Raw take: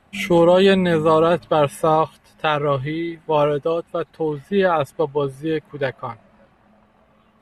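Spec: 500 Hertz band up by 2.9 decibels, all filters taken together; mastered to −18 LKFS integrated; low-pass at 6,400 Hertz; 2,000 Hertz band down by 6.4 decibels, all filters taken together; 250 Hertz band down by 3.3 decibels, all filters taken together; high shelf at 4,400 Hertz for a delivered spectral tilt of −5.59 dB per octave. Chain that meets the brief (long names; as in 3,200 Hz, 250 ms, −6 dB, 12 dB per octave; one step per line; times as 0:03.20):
low-pass filter 6,400 Hz
parametric band 250 Hz −9 dB
parametric band 500 Hz +6 dB
parametric band 2,000 Hz −7 dB
high-shelf EQ 4,400 Hz −9 dB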